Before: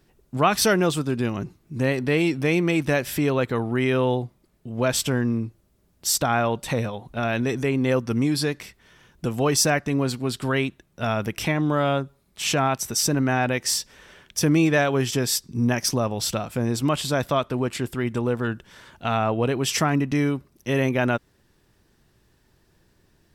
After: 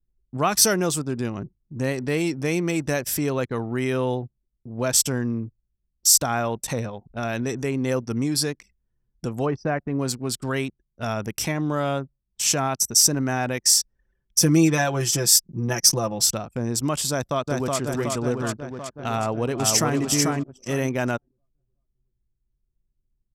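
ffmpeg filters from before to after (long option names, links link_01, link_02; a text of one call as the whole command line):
ffmpeg -i in.wav -filter_complex "[0:a]asplit=3[link_01][link_02][link_03];[link_01]afade=type=out:start_time=9.45:duration=0.02[link_04];[link_02]lowpass=1700,afade=type=in:start_time=9.45:duration=0.02,afade=type=out:start_time=9.98:duration=0.02[link_05];[link_03]afade=type=in:start_time=9.98:duration=0.02[link_06];[link_04][link_05][link_06]amix=inputs=3:normalize=0,asettb=1/sr,asplit=3[link_07][link_08][link_09];[link_07]atrim=end=14.394[link_10];[link_08]atrim=start=14.39:end=16.26,asetpts=PTS-STARTPTS,afade=type=in:duration=0.004:curve=qsin,afade=type=out:start_time=1.866:duration=0.004:curve=qsin,aecho=1:1:5.9:0.77,atrim=end_sample=82467[link_11];[link_09]atrim=start=16.256[link_12];[link_10][link_11]acrossfade=duration=0.004:curve1=hsin:curve2=qsin[link_13];[link_13][link_12]acrossfade=duration=0.004:curve1=qsin:curve2=hsin,asplit=2[link_14][link_15];[link_15]afade=type=in:start_time=17.1:duration=0.01,afade=type=out:start_time=17.78:duration=0.01,aecho=0:1:370|740|1110|1480|1850|2220|2590|2960|3330|3700|4070|4440:0.794328|0.55603|0.389221|0.272455|0.190718|0.133503|0.0934519|0.0654163|0.0457914|0.032054|0.0224378|0.0157065[link_16];[link_14][link_16]amix=inputs=2:normalize=0,asplit=2[link_17][link_18];[link_18]afade=type=in:start_time=19.15:duration=0.01,afade=type=out:start_time=19.99:duration=0.01,aecho=0:1:440|880|1320:0.749894|0.149979|0.0299958[link_19];[link_17][link_19]amix=inputs=2:normalize=0,anlmdn=6.31,highshelf=frequency=4500:width_type=q:width=1.5:gain=8.5,volume=-2.5dB" out.wav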